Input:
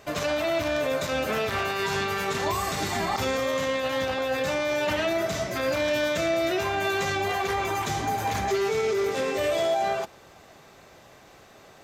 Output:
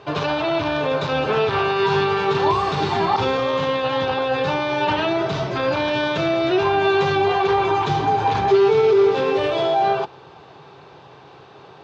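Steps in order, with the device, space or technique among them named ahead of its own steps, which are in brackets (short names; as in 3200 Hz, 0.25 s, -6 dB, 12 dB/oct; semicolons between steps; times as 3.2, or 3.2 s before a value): guitar cabinet (speaker cabinet 93–4200 Hz, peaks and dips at 140 Hz +8 dB, 220 Hz -7 dB, 410 Hz +6 dB, 610 Hz -6 dB, 900 Hz +7 dB, 2000 Hz -9 dB); gain +6.5 dB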